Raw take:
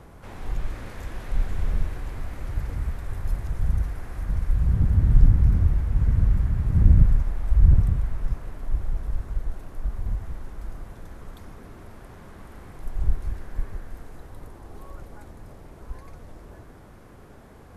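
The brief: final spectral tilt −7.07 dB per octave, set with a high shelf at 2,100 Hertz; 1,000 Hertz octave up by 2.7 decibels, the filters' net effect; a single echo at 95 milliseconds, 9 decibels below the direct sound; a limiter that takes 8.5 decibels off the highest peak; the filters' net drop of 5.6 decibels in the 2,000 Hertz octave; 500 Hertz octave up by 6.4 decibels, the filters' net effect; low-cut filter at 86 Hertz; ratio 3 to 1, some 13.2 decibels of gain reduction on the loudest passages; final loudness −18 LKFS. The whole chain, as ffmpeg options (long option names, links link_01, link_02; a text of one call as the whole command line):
ffmpeg -i in.wav -af "highpass=86,equalizer=frequency=500:width_type=o:gain=8,equalizer=frequency=1000:width_type=o:gain=3.5,equalizer=frequency=2000:width_type=o:gain=-5.5,highshelf=frequency=2100:gain=-7.5,acompressor=threshold=-35dB:ratio=3,alimiter=level_in=7dB:limit=-24dB:level=0:latency=1,volume=-7dB,aecho=1:1:95:0.355,volume=24dB" out.wav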